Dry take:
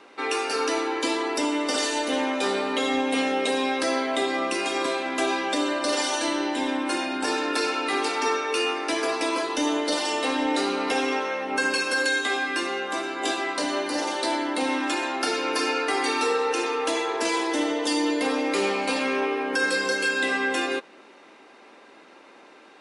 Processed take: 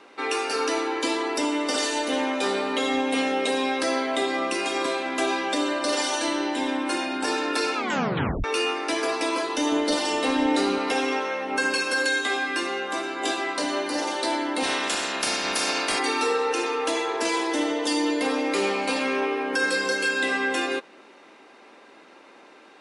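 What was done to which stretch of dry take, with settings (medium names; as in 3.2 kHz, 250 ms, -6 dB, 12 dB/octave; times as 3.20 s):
7.75 s: tape stop 0.69 s
9.72–10.78 s: bass shelf 200 Hz +11 dB
14.62–15.98 s: spectral peaks clipped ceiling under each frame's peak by 20 dB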